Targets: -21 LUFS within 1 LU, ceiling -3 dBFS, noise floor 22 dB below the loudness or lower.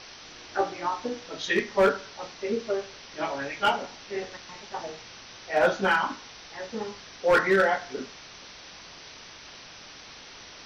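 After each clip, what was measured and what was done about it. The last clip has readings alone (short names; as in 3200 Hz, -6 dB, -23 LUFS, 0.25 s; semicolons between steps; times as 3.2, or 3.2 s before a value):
clipped 0.5%; flat tops at -15.0 dBFS; noise floor -47 dBFS; noise floor target -50 dBFS; loudness -27.5 LUFS; peak -15.0 dBFS; loudness target -21.0 LUFS
-> clip repair -15 dBFS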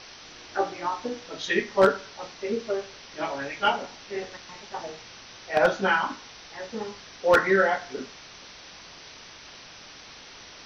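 clipped 0.0%; noise floor -47 dBFS; noise floor target -49 dBFS
-> noise print and reduce 6 dB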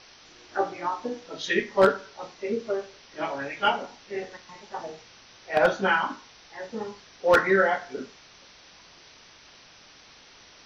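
noise floor -53 dBFS; loudness -26.5 LUFS; peak -6.0 dBFS; loudness target -21.0 LUFS
-> gain +5.5 dB; limiter -3 dBFS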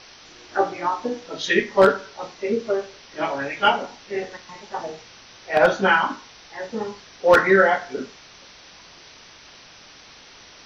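loudness -21.5 LUFS; peak -3.0 dBFS; noise floor -47 dBFS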